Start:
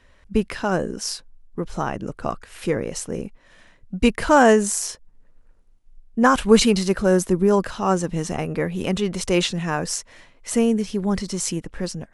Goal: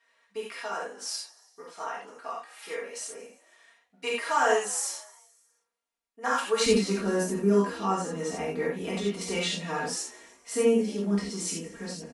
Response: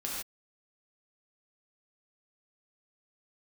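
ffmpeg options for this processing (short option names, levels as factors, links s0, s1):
-filter_complex "[0:a]asetnsamples=n=441:p=0,asendcmd='6.66 highpass f 130',highpass=740,aecho=1:1:4.3:0.93,asplit=5[s0][s1][s2][s3][s4];[s1]adelay=158,afreqshift=65,volume=0.0794[s5];[s2]adelay=316,afreqshift=130,volume=0.0447[s6];[s3]adelay=474,afreqshift=195,volume=0.0248[s7];[s4]adelay=632,afreqshift=260,volume=0.014[s8];[s0][s5][s6][s7][s8]amix=inputs=5:normalize=0[s9];[1:a]atrim=start_sample=2205,asetrate=70560,aresample=44100[s10];[s9][s10]afir=irnorm=-1:irlink=0,volume=0.447"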